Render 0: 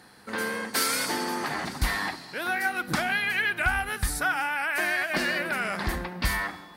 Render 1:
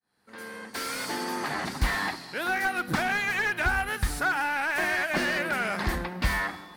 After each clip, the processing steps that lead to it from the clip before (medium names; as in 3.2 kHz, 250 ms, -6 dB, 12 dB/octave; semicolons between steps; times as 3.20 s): fade-in on the opening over 1.76 s; wow and flutter 24 cents; slew-rate limiter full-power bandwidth 99 Hz; trim +1 dB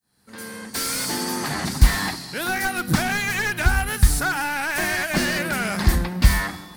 tone controls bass +11 dB, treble +11 dB; trim +2 dB